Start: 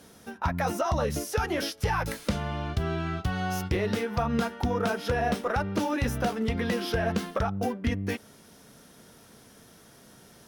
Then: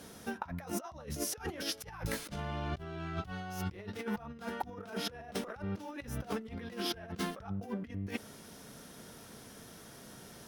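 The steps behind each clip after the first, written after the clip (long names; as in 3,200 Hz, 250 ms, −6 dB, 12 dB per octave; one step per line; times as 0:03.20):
compressor whose output falls as the input rises −34 dBFS, ratio −0.5
level −4.5 dB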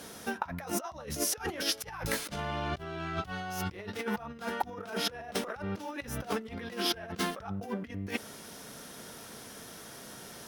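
low-shelf EQ 290 Hz −7.5 dB
level +6.5 dB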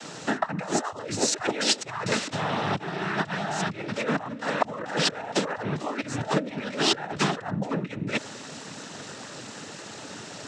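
cochlear-implant simulation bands 12
level +8.5 dB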